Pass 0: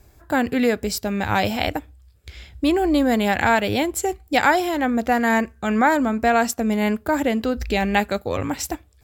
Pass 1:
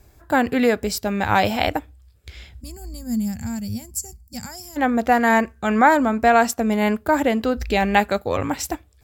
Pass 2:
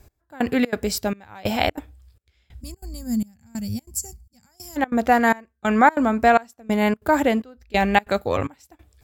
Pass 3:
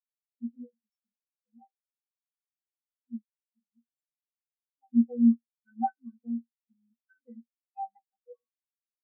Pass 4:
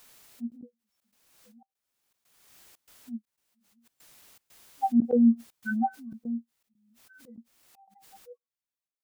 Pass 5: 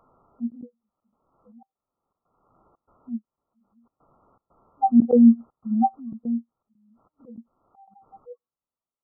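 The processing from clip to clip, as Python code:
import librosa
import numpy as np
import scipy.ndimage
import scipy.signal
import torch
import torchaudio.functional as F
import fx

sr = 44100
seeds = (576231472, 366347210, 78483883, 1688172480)

y1 = fx.spec_box(x, sr, start_s=2.62, length_s=2.15, low_hz=250.0, high_hz=4400.0, gain_db=-24)
y1 = fx.dynamic_eq(y1, sr, hz=940.0, q=0.73, threshold_db=-29.0, ratio=4.0, max_db=4)
y2 = fx.step_gate(y1, sr, bpm=186, pattern='x....xxx.xxxx', floor_db=-24.0, edge_ms=4.5)
y3 = fx.stiff_resonator(y2, sr, f0_hz=230.0, decay_s=0.34, stiffness=0.03)
y3 = fx.spectral_expand(y3, sr, expansion=4.0)
y3 = y3 * 10.0 ** (1.5 / 20.0)
y4 = fx.step_gate(y3, sr, bpm=120, pattern='xxxx.xxx.', floor_db=-24.0, edge_ms=4.5)
y4 = fx.pre_swell(y4, sr, db_per_s=40.0)
y5 = fx.brickwall_lowpass(y4, sr, high_hz=1400.0)
y5 = y5 * 10.0 ** (6.5 / 20.0)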